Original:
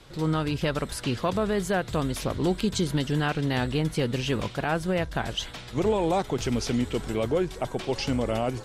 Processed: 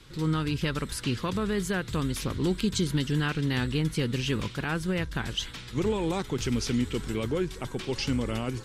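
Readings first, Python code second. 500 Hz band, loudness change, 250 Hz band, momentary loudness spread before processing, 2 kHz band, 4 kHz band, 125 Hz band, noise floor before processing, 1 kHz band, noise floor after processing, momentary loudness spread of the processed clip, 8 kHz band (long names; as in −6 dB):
−5.0 dB, −2.0 dB, −1.0 dB, 4 LU, −1.0 dB, 0.0 dB, −0.5 dB, −42 dBFS, −6.5 dB, −43 dBFS, 4 LU, 0.0 dB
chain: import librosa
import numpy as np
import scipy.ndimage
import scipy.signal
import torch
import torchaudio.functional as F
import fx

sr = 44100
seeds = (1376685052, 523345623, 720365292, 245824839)

y = fx.peak_eq(x, sr, hz=670.0, db=-13.5, octaves=0.76)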